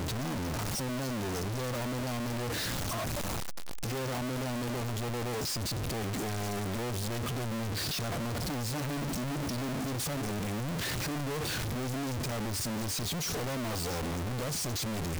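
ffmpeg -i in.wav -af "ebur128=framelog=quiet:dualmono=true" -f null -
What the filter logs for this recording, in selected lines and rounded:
Integrated loudness:
  I:         -30.7 LUFS
  Threshold: -40.7 LUFS
Loudness range:
  LRA:         1.1 LU
  Threshold: -50.8 LUFS
  LRA low:   -31.3 LUFS
  LRA high:  -30.2 LUFS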